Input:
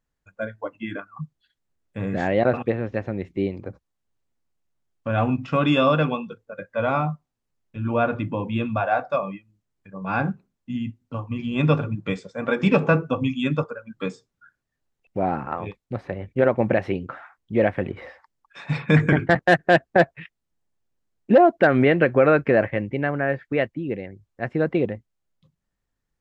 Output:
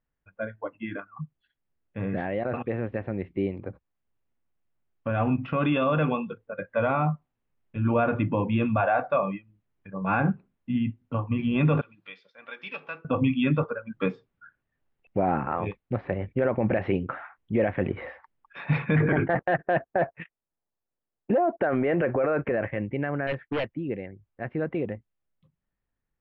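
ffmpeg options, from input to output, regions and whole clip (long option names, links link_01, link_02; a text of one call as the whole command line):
ffmpeg -i in.wav -filter_complex "[0:a]asettb=1/sr,asplit=3[link_01][link_02][link_03];[link_01]atrim=end=11.814[link_04];[link_02]atrim=start=11.81:end=13.05,asetpts=PTS-STARTPTS,afade=type=in:duration=0.004:curve=qsin,afade=type=out:start_time=1.236:duration=0.004:curve=qsin,bandpass=frequency=5000:width_type=q:width=1.9,acompressor=mode=upward:threshold=-50dB:ratio=2.5:attack=3.2:release=140:knee=2.83:detection=peak[link_05];[link_03]atrim=start=13.046[link_06];[link_04][link_05]acrossfade=duration=0.004:curve1=hsin:curve2=qsin[link_07];[link_07][link_06]acrossfade=duration=0.004:curve1=qsin:curve2=hsin,asettb=1/sr,asplit=3[link_08][link_09][link_10];[link_08]atrim=end=19.004[link_11];[link_09]atrim=start=19:end=22.52,asetpts=PTS-STARTPTS,afade=type=in:duration=0.004:curve=qsin,afade=type=out:start_time=3.516:duration=0.004:curve=qsin,agate=range=-15dB:threshold=-38dB:ratio=16:release=100:detection=peak,equalizer=frequency=720:width=0.46:gain=10[link_12];[link_10]atrim=start=22.516[link_13];[link_11][link_12]acrossfade=duration=0.004:curve1=hsin:curve2=qsin[link_14];[link_14][link_13]acrossfade=duration=0.004:curve1=qsin:curve2=hsin,asettb=1/sr,asplit=3[link_15][link_16][link_17];[link_15]atrim=end=23.274[link_18];[link_16]atrim=start=23.27:end=23.81,asetpts=PTS-STARTPTS,afade=type=in:duration=0.004:curve=qsin,afade=type=out:start_time=0.536:duration=0.004:curve=qsin,agate=range=-33dB:threshold=-55dB:ratio=3:release=100:detection=peak,aeval=exprs='0.112*(abs(mod(val(0)/0.112+3,4)-2)-1)':channel_layout=same[link_19];[link_17]atrim=start=23.806[link_20];[link_18][link_19]acrossfade=duration=0.004:curve1=hsin:curve2=qsin[link_21];[link_21][link_20]acrossfade=duration=0.004:curve1=qsin:curve2=hsin,alimiter=limit=-16dB:level=0:latency=1:release=32,lowpass=frequency=3000:width=0.5412,lowpass=frequency=3000:width=1.3066,dynaudnorm=framelen=500:gausssize=21:maxgain=5dB,volume=-3dB" out.wav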